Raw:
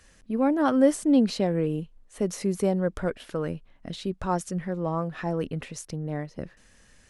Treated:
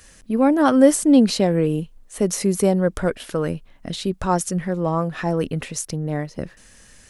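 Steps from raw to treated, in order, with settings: treble shelf 6.5 kHz +9.5 dB; trim +6.5 dB

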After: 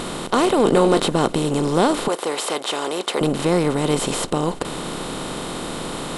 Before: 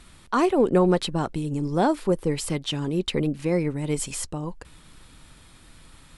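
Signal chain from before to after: spectral levelling over time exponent 0.4; 0.63–1.08 s: doubling 20 ms -6.5 dB; 2.08–3.21 s: high-pass 510 Hz 12 dB/octave

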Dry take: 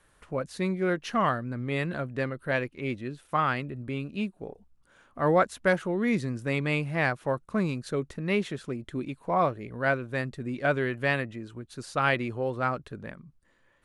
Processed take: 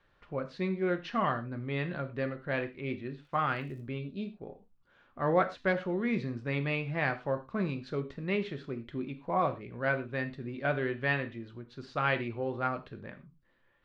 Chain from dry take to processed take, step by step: low-pass 4.5 kHz 24 dB/octave; 3.24–3.80 s: crackle 54 per s -> 250 per s -48 dBFS; 3.99–4.27 s: time-frequency box 700–3100 Hz -10 dB; gated-style reverb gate 140 ms falling, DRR 7 dB; trim -5 dB

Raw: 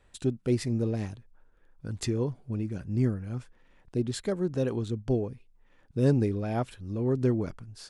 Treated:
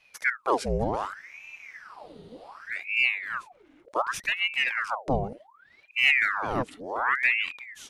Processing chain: spectral freeze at 1.15 s, 1.53 s; ring modulator with a swept carrier 1.4 kHz, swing 80%, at 0.67 Hz; trim +4 dB

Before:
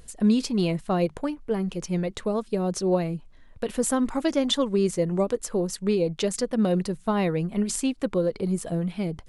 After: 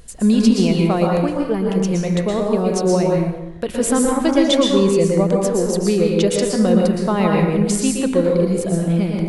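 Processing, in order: plate-style reverb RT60 0.96 s, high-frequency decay 0.65×, pre-delay 105 ms, DRR -1 dB; trim +5 dB

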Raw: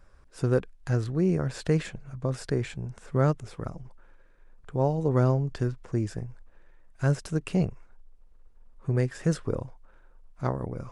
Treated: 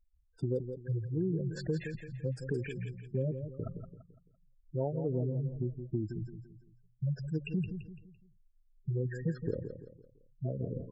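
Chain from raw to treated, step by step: gate -42 dBFS, range -7 dB; spectral gate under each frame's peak -10 dB strong; bass shelf 97 Hz -9 dB; compression 3:1, threshold -31 dBFS, peak gain reduction 8.5 dB; feedback delay 169 ms, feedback 39%, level -8.5 dB

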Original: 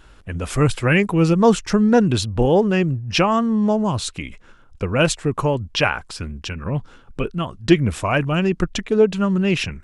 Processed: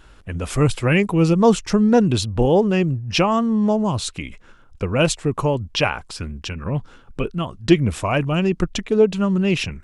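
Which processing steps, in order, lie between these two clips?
dynamic bell 1.6 kHz, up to -5 dB, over -38 dBFS, Q 2.2

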